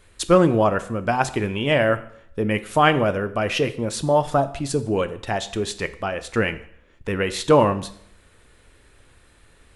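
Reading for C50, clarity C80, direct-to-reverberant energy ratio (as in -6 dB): 15.5 dB, 18.5 dB, 11.5 dB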